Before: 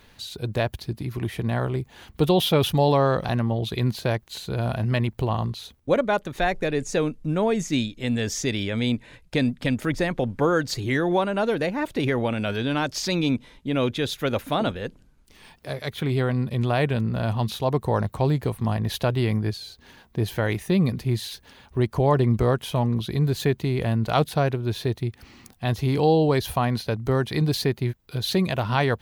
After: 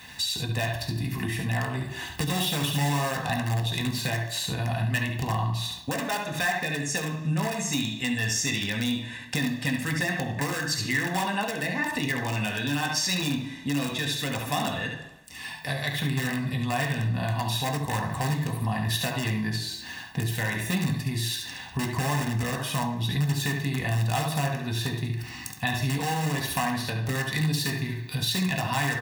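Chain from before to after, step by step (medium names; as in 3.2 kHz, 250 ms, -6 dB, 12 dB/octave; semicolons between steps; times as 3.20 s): peaking EQ 210 Hz -10.5 dB 0.22 oct; feedback delay 70 ms, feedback 17%, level -6 dB; in parallel at -7.5 dB: integer overflow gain 15 dB; on the sum: reverberation RT60 0.70 s, pre-delay 3 ms, DRR 2 dB; compression 3:1, threshold -35 dBFS, peak gain reduction 15 dB; high-pass 60 Hz; hum notches 60/120 Hz; comb 1.1 ms, depth 70%; trim +6 dB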